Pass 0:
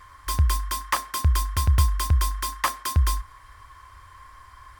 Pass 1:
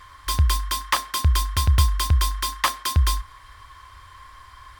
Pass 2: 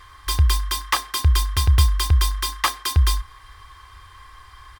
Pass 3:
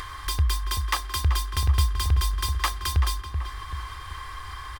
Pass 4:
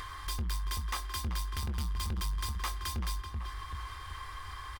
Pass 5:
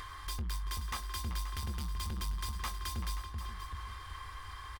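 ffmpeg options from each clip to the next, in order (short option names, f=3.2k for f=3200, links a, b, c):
-af "equalizer=f=3.6k:t=o:w=0.97:g=7,volume=1.5dB"
-af "aecho=1:1:2.5:0.47"
-filter_complex "[0:a]acompressor=mode=upward:threshold=-18dB:ratio=2.5,asplit=2[a][b];[b]adelay=383,lowpass=f=1.8k:p=1,volume=-7dB,asplit=2[c][d];[d]adelay=383,lowpass=f=1.8k:p=1,volume=0.49,asplit=2[e][f];[f]adelay=383,lowpass=f=1.8k:p=1,volume=0.49,asplit=2[g][h];[h]adelay=383,lowpass=f=1.8k:p=1,volume=0.49,asplit=2[i][j];[j]adelay=383,lowpass=f=1.8k:p=1,volume=0.49,asplit=2[k][l];[l]adelay=383,lowpass=f=1.8k:p=1,volume=0.49[m];[a][c][e][g][i][k][m]amix=inputs=7:normalize=0,volume=-6dB"
-filter_complex "[0:a]asoftclip=type=tanh:threshold=-24.5dB,asplit=2[a][b];[b]adelay=22,volume=-11.5dB[c];[a][c]amix=inputs=2:normalize=0,volume=-5.5dB"
-af "aecho=1:1:530:0.251,volume=-3dB"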